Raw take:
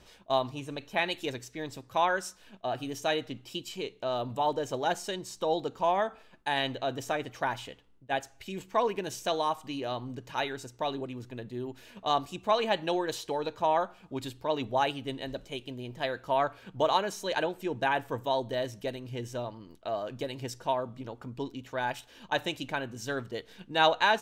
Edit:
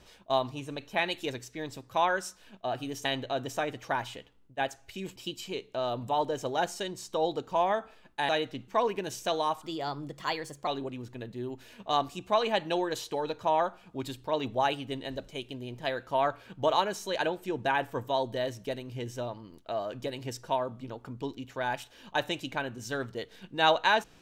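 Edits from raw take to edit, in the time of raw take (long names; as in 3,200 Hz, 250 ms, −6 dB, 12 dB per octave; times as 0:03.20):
0:03.05–0:03.44: swap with 0:06.57–0:08.68
0:09.62–0:10.84: play speed 116%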